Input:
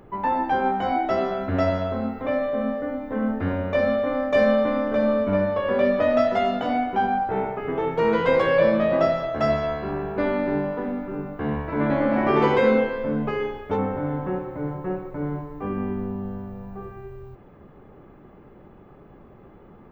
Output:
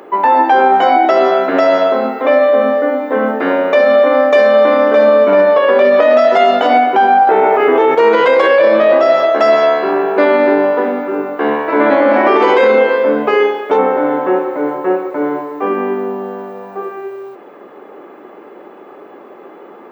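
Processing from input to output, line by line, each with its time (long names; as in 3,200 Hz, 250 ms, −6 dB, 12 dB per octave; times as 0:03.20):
0:07.27–0:07.95: envelope flattener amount 70%
whole clip: high-pass filter 320 Hz 24 dB per octave; boost into a limiter +17 dB; level −1 dB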